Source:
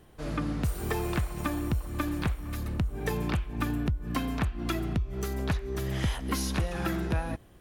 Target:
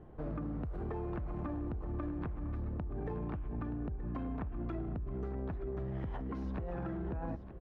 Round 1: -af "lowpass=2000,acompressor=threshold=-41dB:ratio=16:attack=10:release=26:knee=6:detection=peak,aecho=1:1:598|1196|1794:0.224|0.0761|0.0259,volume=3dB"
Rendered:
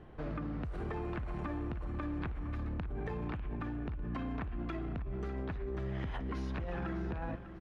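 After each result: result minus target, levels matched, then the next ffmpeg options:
2,000 Hz band +7.5 dB; echo 327 ms early
-af "lowpass=980,acompressor=threshold=-41dB:ratio=16:attack=10:release=26:knee=6:detection=peak,aecho=1:1:598|1196|1794:0.224|0.0761|0.0259,volume=3dB"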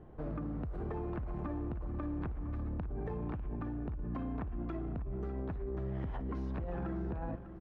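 echo 327 ms early
-af "lowpass=980,acompressor=threshold=-41dB:ratio=16:attack=10:release=26:knee=6:detection=peak,aecho=1:1:925|1850|2775:0.224|0.0761|0.0259,volume=3dB"

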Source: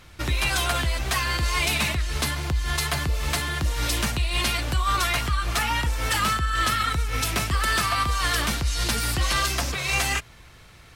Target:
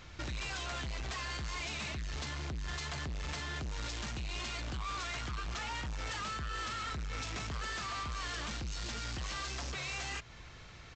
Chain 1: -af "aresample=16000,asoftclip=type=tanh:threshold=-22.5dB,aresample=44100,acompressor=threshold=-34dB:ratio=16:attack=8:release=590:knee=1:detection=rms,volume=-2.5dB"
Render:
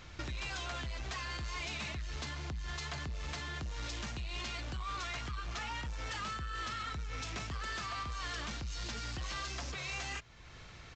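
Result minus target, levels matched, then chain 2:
soft clipping: distortion −6 dB
-af "aresample=16000,asoftclip=type=tanh:threshold=-30.5dB,aresample=44100,acompressor=threshold=-34dB:ratio=16:attack=8:release=590:knee=1:detection=rms,volume=-2.5dB"

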